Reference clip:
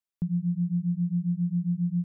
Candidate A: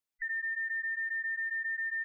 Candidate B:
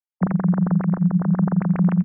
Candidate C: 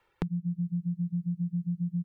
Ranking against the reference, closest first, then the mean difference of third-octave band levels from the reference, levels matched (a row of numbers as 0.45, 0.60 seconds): C, A, B; 2.5, 9.0, 11.5 decibels